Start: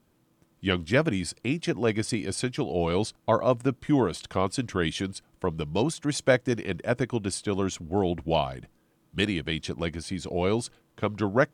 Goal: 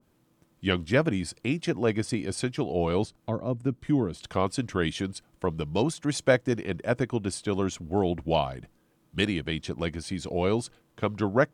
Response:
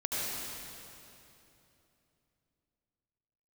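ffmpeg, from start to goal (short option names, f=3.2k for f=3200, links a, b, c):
-filter_complex "[0:a]asettb=1/sr,asplit=3[a][b][c];[a]atrim=end=3.044[d];[b]atrim=start=3.04:end=4.22,asetpts=PTS-STARTPTS,afade=t=in:d=0.004:c=qsin,afade=t=out:st=1.176:d=0.004:c=qsin,acrossover=split=380[e][f];[f]acompressor=threshold=-42dB:ratio=2.5[g];[e][g]amix=inputs=2:normalize=0[h];[c]atrim=start=4.216[i];[d][h]acrossfade=d=0.004:c1=hsin:c2=qsin[j];[j][i]acrossfade=d=0.004:c1=qsin:c2=hsin,adynamicequalizer=threshold=0.01:dfrequency=1700:dqfactor=0.7:tfrequency=1700:tqfactor=0.7:attack=5:release=100:ratio=0.375:range=3:mode=cutabove:tftype=highshelf"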